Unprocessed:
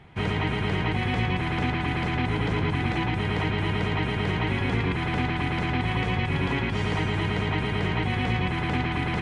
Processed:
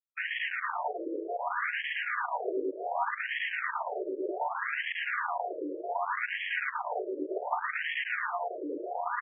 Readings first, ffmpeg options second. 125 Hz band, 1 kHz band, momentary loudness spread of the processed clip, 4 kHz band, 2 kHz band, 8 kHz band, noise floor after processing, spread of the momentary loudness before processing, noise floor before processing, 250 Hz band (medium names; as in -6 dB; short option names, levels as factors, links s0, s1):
under -40 dB, -2.0 dB, 4 LU, -9.5 dB, -2.5 dB, no reading, -42 dBFS, 1 LU, -28 dBFS, -14.0 dB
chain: -filter_complex "[0:a]highpass=f=280:w=0.5412,highpass=f=280:w=1.3066,highshelf=f=2300:t=q:w=1.5:g=-12,asplit=2[s0][s1];[s1]alimiter=level_in=1.12:limit=0.0631:level=0:latency=1:release=224,volume=0.891,volume=0.794[s2];[s0][s2]amix=inputs=2:normalize=0,afreqshift=-37,acrusher=bits=3:mix=0:aa=0.5,asplit=2[s3][s4];[s4]aecho=0:1:981:0.15[s5];[s3][s5]amix=inputs=2:normalize=0,afftfilt=real='re*between(b*sr/1024,410*pow(2400/410,0.5+0.5*sin(2*PI*0.66*pts/sr))/1.41,410*pow(2400/410,0.5+0.5*sin(2*PI*0.66*pts/sr))*1.41)':imag='im*between(b*sr/1024,410*pow(2400/410,0.5+0.5*sin(2*PI*0.66*pts/sr))/1.41,410*pow(2400/410,0.5+0.5*sin(2*PI*0.66*pts/sr))*1.41)':win_size=1024:overlap=0.75"